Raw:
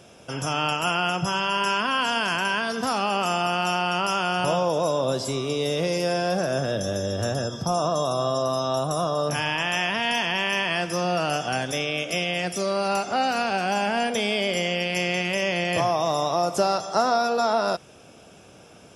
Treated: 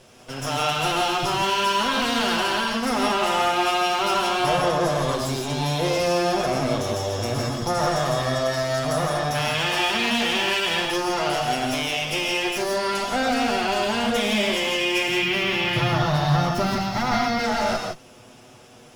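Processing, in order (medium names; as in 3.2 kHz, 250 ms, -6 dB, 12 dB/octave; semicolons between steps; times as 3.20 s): comb filter that takes the minimum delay 8.1 ms; 15.08–17.44 s: graphic EQ 125/250/500/4000/8000 Hz +11/+4/-7/+3/-11 dB; gated-style reverb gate 190 ms rising, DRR 1 dB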